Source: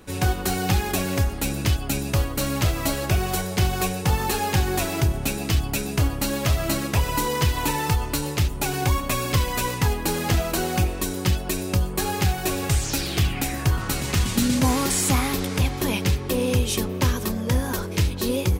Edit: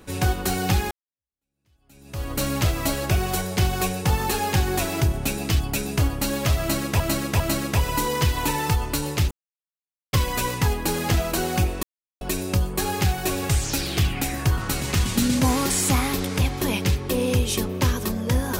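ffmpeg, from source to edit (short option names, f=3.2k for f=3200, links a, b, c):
-filter_complex "[0:a]asplit=8[a][b][c][d][e][f][g][h];[a]atrim=end=0.91,asetpts=PTS-STARTPTS,afade=t=out:st=0.906:d=0.004:c=hsin[i];[b]atrim=start=0.91:end=7.002,asetpts=PTS-STARTPTS,afade=t=in:d=1.4:c=exp[j];[c]atrim=start=6.598:end=7.002[k];[d]atrim=start=6.598:end=8.51,asetpts=PTS-STARTPTS,afade=t=out:st=1.908:d=0.004:c=hsin[l];[e]atrim=start=8.51:end=9.33,asetpts=PTS-STARTPTS,volume=0[m];[f]atrim=start=9.33:end=11.03,asetpts=PTS-STARTPTS,afade=t=in:d=0.004:c=hsin,afade=t=out:st=1.696:d=0.004:c=hsin[n];[g]atrim=start=11.03:end=11.41,asetpts=PTS-STARTPTS,volume=0[o];[h]atrim=start=11.41,asetpts=PTS-STARTPTS,afade=t=in:d=0.004:c=hsin[p];[i][j]concat=n=2:v=0:a=1[q];[q][k]acrossfade=d=0.004:c1=hsin:c2=hsin[r];[l][m][n][o][p]concat=n=5:v=0:a=1[s];[r][s]acrossfade=d=0.004:c1=hsin:c2=hsin"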